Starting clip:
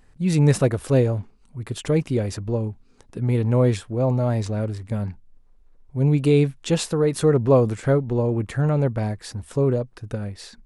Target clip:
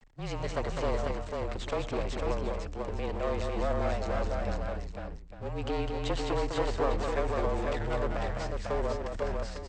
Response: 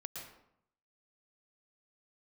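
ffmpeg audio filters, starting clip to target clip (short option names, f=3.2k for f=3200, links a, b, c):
-filter_complex "[0:a]aresample=16000,aeval=exprs='max(val(0),0)':c=same,aresample=44100,acompressor=threshold=-23dB:ratio=6,asetrate=48510,aresample=44100,acrossover=split=4500[a][b];[b]acompressor=threshold=-50dB:ratio=4:attack=1:release=60[c];[a][c]amix=inputs=2:normalize=0,acrossover=split=360[d][e];[d]asoftclip=type=hard:threshold=-34dB[f];[f][e]amix=inputs=2:normalize=0,afreqshift=-38,aecho=1:1:74|119|205|498|850:0.1|0.106|0.562|0.668|0.251"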